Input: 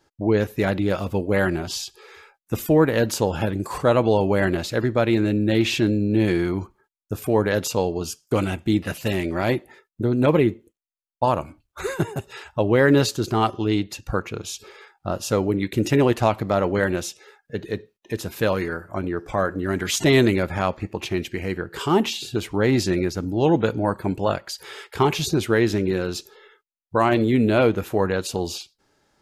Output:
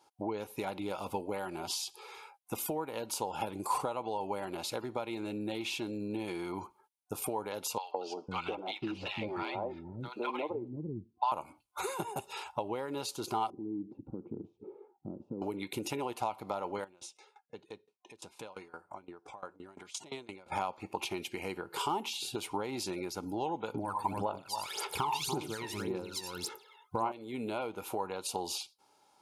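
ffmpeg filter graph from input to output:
ffmpeg -i in.wav -filter_complex "[0:a]asettb=1/sr,asplit=3[link_01][link_02][link_03];[link_01]atrim=end=7.784[link_04];[link_02]atrim=start=7.78:end=11.32,asetpts=PTS-STARTPTS,afade=type=in:duration=0.004:curve=qsin,afade=type=out:start_time=3.536:duration=0.004:curve=qsin,lowpass=frequency=4500:width=0.5412,lowpass=frequency=4500:width=1.3066,aphaser=in_gain=1:out_gain=1:delay=3:decay=0.31:speed=1:type=triangular,acrossover=split=240|900[link_05][link_06][link_07];[link_06]adelay=160[link_08];[link_05]adelay=500[link_09];[link_09][link_08][link_07]amix=inputs=3:normalize=0,atrim=end_sample=156114[link_10];[link_03]atrim=start=11.316[link_11];[link_04][link_10]acrossfade=duration=0.004:curve1=hsin:curve2=qsin[link_12];[link_12][link_11]acrossfade=duration=0.004:curve1=qsin:curve2=hsin,asettb=1/sr,asplit=3[link_13][link_14][link_15];[link_13]atrim=end=13.504[link_16];[link_14]atrim=start=13.5:end=15.42,asetpts=PTS-STARTPTS,afade=type=in:duration=0.004:curve=qsin,afade=type=out:start_time=1.916:duration=0.004:curve=qsin,acompressor=threshold=-37dB:ratio=5:attack=3.2:release=140:knee=1:detection=peak,lowpass=frequency=310:width_type=q:width=2.2,equalizer=frequency=190:width=0.55:gain=11[link_17];[link_15]atrim=start=15.416[link_18];[link_16][link_17]acrossfade=duration=0.004:curve1=hsin:curve2=qsin[link_19];[link_19][link_18]acrossfade=duration=0.004:curve1=qsin:curve2=hsin,asettb=1/sr,asplit=3[link_20][link_21][link_22];[link_20]atrim=end=16.844[link_23];[link_21]atrim=start=16.84:end=20.52,asetpts=PTS-STARTPTS,afade=type=in:duration=0.004:curve=qsin,afade=type=out:start_time=3.676:duration=0.004:curve=qsin,lowpass=frequency=8900:width=0.5412,lowpass=frequency=8900:width=1.3066,acompressor=threshold=-39dB:ratio=2:attack=3.2:release=140:knee=1:detection=peak,aeval=exprs='val(0)*pow(10,-22*if(lt(mod(5.8*n/s,1),2*abs(5.8)/1000),1-mod(5.8*n/s,1)/(2*abs(5.8)/1000),(mod(5.8*n/s,1)-2*abs(5.8)/1000)/(1-2*abs(5.8)/1000))/20)':channel_layout=same[link_24];[link_22]atrim=start=20.516[link_25];[link_23][link_24]acrossfade=duration=0.004:curve1=hsin:curve2=qsin[link_26];[link_26][link_25]acrossfade=duration=0.004:curve1=qsin:curve2=hsin,asettb=1/sr,asplit=3[link_27][link_28][link_29];[link_27]atrim=end=23.744[link_30];[link_28]atrim=start=23.74:end=27.12,asetpts=PTS-STARTPTS,afade=type=in:duration=0.004:curve=qsin,afade=type=out:start_time=3.376:duration=0.004:curve=qsin,aecho=1:1:80|108|286:0.282|0.188|0.422,atrim=end_sample=149058,aphaser=in_gain=1:out_gain=1:delay=1.1:decay=0.78:speed=1.8:type=sinusoidal[link_31];[link_29]atrim=start=27.116[link_32];[link_30][link_31]acrossfade=duration=0.004:curve1=hsin:curve2=qsin[link_33];[link_33][link_32]acrossfade=duration=0.004:curve1=qsin:curve2=hsin,highpass=frequency=550:poles=1,acompressor=threshold=-31dB:ratio=16,superequalizer=9b=2.51:11b=0.316:16b=2,volume=-2dB" out.wav

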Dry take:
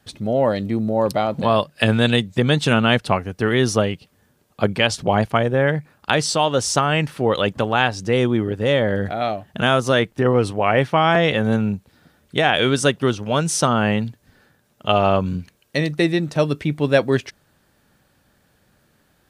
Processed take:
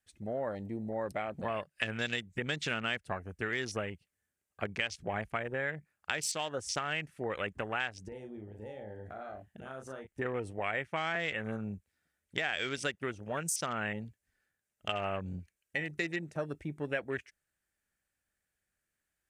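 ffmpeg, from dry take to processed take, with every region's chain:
ffmpeg -i in.wav -filter_complex "[0:a]asettb=1/sr,asplit=3[link_01][link_02][link_03];[link_01]atrim=end=8.084[link_04];[link_02]atrim=start=8.08:end=10.07,asetpts=PTS-STARTPTS,afade=type=in:duration=0.004:curve=qsin,afade=type=out:start_time=1.986:duration=0.004:curve=qsin,bandreject=frequency=60:width_type=h:width=6,bandreject=frequency=120:width_type=h:width=6,bandreject=frequency=180:width_type=h:width=6,acompressor=threshold=-27dB:ratio=6:attack=3.2:release=140:knee=1:detection=peak,asplit=2[link_05][link_06];[link_06]adelay=38,volume=-5.5dB[link_07];[link_05][link_07]amix=inputs=2:normalize=0,atrim=end_sample=87759[link_08];[link_03]atrim=start=10.066[link_09];[link_04][link_08]acrossfade=duration=0.004:curve1=hsin:curve2=qsin[link_10];[link_10][link_09]acrossfade=duration=0.004:curve1=qsin:curve2=hsin,afwtdn=0.0355,equalizer=frequency=125:width_type=o:width=1:gain=-11,equalizer=frequency=250:width_type=o:width=1:gain=-8,equalizer=frequency=500:width_type=o:width=1:gain=-5,equalizer=frequency=1000:width_type=o:width=1:gain=-8,equalizer=frequency=2000:width_type=o:width=1:gain=6,equalizer=frequency=4000:width_type=o:width=1:gain=-7,equalizer=frequency=8000:width_type=o:width=1:gain=7,acompressor=threshold=-26dB:ratio=3,volume=-6dB" out.wav

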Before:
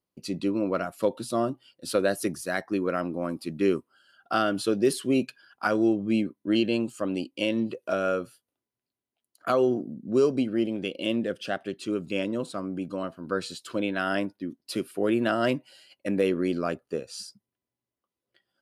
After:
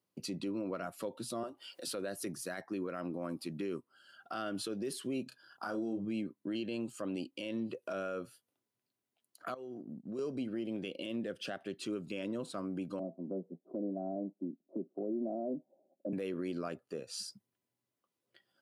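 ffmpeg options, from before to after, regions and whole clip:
ffmpeg -i in.wav -filter_complex "[0:a]asettb=1/sr,asplit=3[link_01][link_02][link_03];[link_01]atrim=end=1.434[link_04];[link_02]atrim=start=1.43:end=1.87,asetpts=PTS-STARTPTS,afade=type=in:duration=0.004:curve=qsin,afade=type=out:start_time=0.436:duration=0.004:curve=qsin,highpass=460,tremolo=f=190:d=0.261,acompressor=mode=upward:threshold=-36dB:ratio=2.5:attack=3.2:release=140:knee=2.83:detection=peak[link_05];[link_03]atrim=start=1.866[link_06];[link_04][link_05]acrossfade=duration=0.004:curve1=hsin:curve2=qsin[link_07];[link_07][link_06]acrossfade=duration=0.004:curve1=qsin:curve2=hsin,asettb=1/sr,asplit=3[link_08][link_09][link_10];[link_08]atrim=end=5.234[link_11];[link_09]atrim=start=5.23:end=6.05,asetpts=PTS-STARTPTS,afade=type=in:duration=0.004:curve=qsin,afade=type=out:start_time=0.816:duration=0.004:curve=qsin,equalizer=frequency=2300:width=2.1:gain=-12.5,asplit=2[link_12][link_13];[link_13]adelay=31,volume=-6dB[link_14];[link_12][link_14]amix=inputs=2:normalize=0,atrim=end_sample=36162[link_15];[link_10]atrim=start=6.046[link_16];[link_11][link_15]acrossfade=duration=0.004:curve1=hsin:curve2=qsin[link_17];[link_17][link_16]acrossfade=duration=0.004:curve1=qsin:curve2=hsin,asettb=1/sr,asplit=3[link_18][link_19][link_20];[link_18]atrim=end=9.544[link_21];[link_19]atrim=start=9.54:end=10.19,asetpts=PTS-STARTPTS,afade=type=in:duration=0.004:curve=qsin,afade=type=out:start_time=0.646:duration=0.004:curve=qsin,lowshelf=frequency=83:gain=-7,acompressor=threshold=-35dB:ratio=6:attack=3.2:release=140:knee=1:detection=peak,agate=range=-33dB:threshold=-36dB:ratio=3:release=100:detection=peak[link_22];[link_20]atrim=start=10.186[link_23];[link_21][link_22]acrossfade=duration=0.004:curve1=hsin:curve2=qsin[link_24];[link_24][link_23]acrossfade=duration=0.004:curve1=qsin:curve2=hsin,asettb=1/sr,asplit=3[link_25][link_26][link_27];[link_25]atrim=end=12.994[link_28];[link_26]atrim=start=12.99:end=16.13,asetpts=PTS-STARTPTS,afade=type=in:duration=0.004:curve=qsin,afade=type=out:start_time=3.136:duration=0.004:curve=qsin,asuperpass=centerf=350:order=12:qfactor=0.61,bandreject=frequency=470:width=7.6[link_29];[link_27]atrim=start=16.126[link_30];[link_28][link_29]acrossfade=duration=0.004:curve1=hsin:curve2=qsin[link_31];[link_31][link_30]acrossfade=duration=0.004:curve1=qsin:curve2=hsin,highpass=frequency=91:width=0.5412,highpass=frequency=91:width=1.3066,acompressor=threshold=-41dB:ratio=2,alimiter=level_in=6dB:limit=-24dB:level=0:latency=1:release=45,volume=-6dB,volume=1dB" out.wav

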